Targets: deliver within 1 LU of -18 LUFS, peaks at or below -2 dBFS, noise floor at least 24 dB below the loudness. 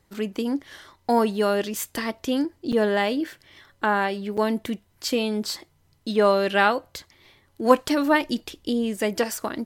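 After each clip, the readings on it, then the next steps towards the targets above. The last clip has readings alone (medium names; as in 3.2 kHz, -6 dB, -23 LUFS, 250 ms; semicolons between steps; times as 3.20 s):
dropouts 2; longest dropout 6.6 ms; loudness -24.0 LUFS; peak level -4.0 dBFS; loudness target -18.0 LUFS
-> interpolate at 2.72/4.37 s, 6.6 ms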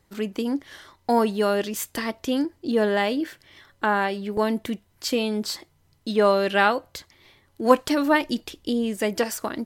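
dropouts 0; loudness -24.0 LUFS; peak level -4.0 dBFS; loudness target -18.0 LUFS
-> trim +6 dB; peak limiter -2 dBFS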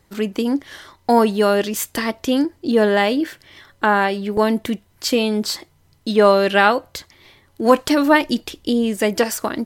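loudness -18.5 LUFS; peak level -2.0 dBFS; noise floor -58 dBFS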